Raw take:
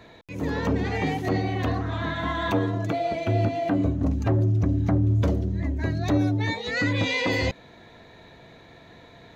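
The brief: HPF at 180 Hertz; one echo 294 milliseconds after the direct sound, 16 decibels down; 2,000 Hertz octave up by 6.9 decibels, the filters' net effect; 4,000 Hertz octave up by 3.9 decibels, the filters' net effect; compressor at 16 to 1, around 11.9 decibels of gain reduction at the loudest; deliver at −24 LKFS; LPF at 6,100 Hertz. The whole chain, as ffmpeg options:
ffmpeg -i in.wav -af "highpass=180,lowpass=6100,equalizer=frequency=2000:width_type=o:gain=7,equalizer=frequency=4000:width_type=o:gain=3,acompressor=threshold=-29dB:ratio=16,aecho=1:1:294:0.158,volume=8.5dB" out.wav

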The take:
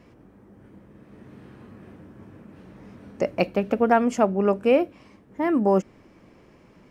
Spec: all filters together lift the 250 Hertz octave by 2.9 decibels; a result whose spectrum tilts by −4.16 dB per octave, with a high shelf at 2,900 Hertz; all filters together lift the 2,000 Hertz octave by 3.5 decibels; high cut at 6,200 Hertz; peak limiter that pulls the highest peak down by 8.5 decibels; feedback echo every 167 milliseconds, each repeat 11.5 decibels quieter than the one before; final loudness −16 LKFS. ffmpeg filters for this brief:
ffmpeg -i in.wav -af "lowpass=6200,equalizer=frequency=250:width_type=o:gain=3.5,equalizer=frequency=2000:width_type=o:gain=6.5,highshelf=frequency=2900:gain=-5,alimiter=limit=-12dB:level=0:latency=1,aecho=1:1:167|334|501:0.266|0.0718|0.0194,volume=7.5dB" out.wav

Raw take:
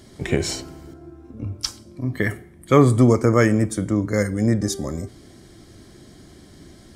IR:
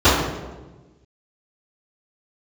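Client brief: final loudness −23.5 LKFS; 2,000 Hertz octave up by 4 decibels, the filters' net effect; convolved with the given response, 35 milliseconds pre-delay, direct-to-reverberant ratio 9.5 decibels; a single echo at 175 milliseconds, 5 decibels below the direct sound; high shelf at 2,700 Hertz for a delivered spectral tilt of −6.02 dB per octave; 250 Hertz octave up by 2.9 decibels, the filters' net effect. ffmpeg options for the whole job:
-filter_complex "[0:a]equalizer=frequency=250:width_type=o:gain=3.5,equalizer=frequency=2000:width_type=o:gain=7,highshelf=frequency=2700:gain=-6.5,aecho=1:1:175:0.562,asplit=2[link_01][link_02];[1:a]atrim=start_sample=2205,adelay=35[link_03];[link_02][link_03]afir=irnorm=-1:irlink=0,volume=-36dB[link_04];[link_01][link_04]amix=inputs=2:normalize=0,volume=-7.5dB"

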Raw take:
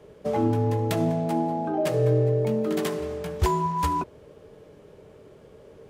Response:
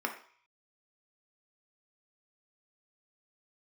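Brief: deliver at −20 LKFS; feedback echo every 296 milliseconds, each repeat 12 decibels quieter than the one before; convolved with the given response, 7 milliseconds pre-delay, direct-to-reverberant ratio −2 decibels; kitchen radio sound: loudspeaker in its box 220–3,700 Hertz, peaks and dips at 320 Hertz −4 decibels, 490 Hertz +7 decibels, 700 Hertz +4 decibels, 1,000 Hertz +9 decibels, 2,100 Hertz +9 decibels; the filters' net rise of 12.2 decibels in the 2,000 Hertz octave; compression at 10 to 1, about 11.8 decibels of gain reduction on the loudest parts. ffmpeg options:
-filter_complex "[0:a]equalizer=frequency=2000:width_type=o:gain=8,acompressor=threshold=-29dB:ratio=10,aecho=1:1:296|592|888:0.251|0.0628|0.0157,asplit=2[link_01][link_02];[1:a]atrim=start_sample=2205,adelay=7[link_03];[link_02][link_03]afir=irnorm=-1:irlink=0,volume=-4dB[link_04];[link_01][link_04]amix=inputs=2:normalize=0,highpass=220,equalizer=frequency=320:width_type=q:width=4:gain=-4,equalizer=frequency=490:width_type=q:width=4:gain=7,equalizer=frequency=700:width_type=q:width=4:gain=4,equalizer=frequency=1000:width_type=q:width=4:gain=9,equalizer=frequency=2100:width_type=q:width=4:gain=9,lowpass=frequency=3700:width=0.5412,lowpass=frequency=3700:width=1.3066,volume=2dB"

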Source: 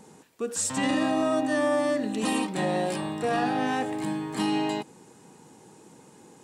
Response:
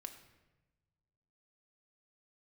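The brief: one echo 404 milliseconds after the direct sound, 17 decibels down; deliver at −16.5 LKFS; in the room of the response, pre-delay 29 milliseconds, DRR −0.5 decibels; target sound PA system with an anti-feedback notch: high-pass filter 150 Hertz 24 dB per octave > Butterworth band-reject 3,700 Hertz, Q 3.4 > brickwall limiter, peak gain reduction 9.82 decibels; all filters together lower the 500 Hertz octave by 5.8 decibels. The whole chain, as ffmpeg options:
-filter_complex "[0:a]equalizer=frequency=500:width_type=o:gain=-7.5,aecho=1:1:404:0.141,asplit=2[link_01][link_02];[1:a]atrim=start_sample=2205,adelay=29[link_03];[link_02][link_03]afir=irnorm=-1:irlink=0,volume=5dB[link_04];[link_01][link_04]amix=inputs=2:normalize=0,highpass=frequency=150:width=0.5412,highpass=frequency=150:width=1.3066,asuperstop=centerf=3700:order=8:qfactor=3.4,volume=14dB,alimiter=limit=-8dB:level=0:latency=1"

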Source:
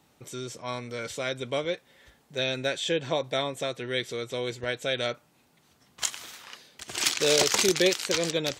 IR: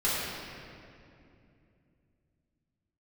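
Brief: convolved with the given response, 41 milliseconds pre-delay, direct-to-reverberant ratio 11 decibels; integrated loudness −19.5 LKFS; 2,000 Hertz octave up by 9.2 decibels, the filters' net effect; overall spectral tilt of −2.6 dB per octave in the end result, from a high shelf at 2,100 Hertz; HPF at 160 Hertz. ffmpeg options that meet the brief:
-filter_complex "[0:a]highpass=160,equalizer=frequency=2000:width_type=o:gain=9,highshelf=frequency=2100:gain=4,asplit=2[link_01][link_02];[1:a]atrim=start_sample=2205,adelay=41[link_03];[link_02][link_03]afir=irnorm=-1:irlink=0,volume=-22.5dB[link_04];[link_01][link_04]amix=inputs=2:normalize=0,volume=3dB"

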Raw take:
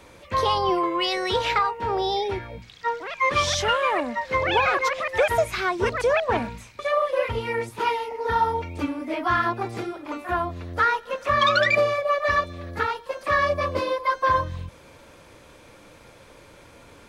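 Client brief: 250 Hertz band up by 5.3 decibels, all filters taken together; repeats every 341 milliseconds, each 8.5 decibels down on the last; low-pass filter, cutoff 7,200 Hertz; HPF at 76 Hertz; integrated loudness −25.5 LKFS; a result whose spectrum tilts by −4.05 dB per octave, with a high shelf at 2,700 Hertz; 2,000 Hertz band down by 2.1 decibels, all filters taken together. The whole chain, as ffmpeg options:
ffmpeg -i in.wav -af "highpass=76,lowpass=7200,equalizer=frequency=250:width_type=o:gain=7.5,equalizer=frequency=2000:width_type=o:gain=-5,highshelf=frequency=2700:gain=5.5,aecho=1:1:341|682|1023|1364:0.376|0.143|0.0543|0.0206,volume=-2.5dB" out.wav

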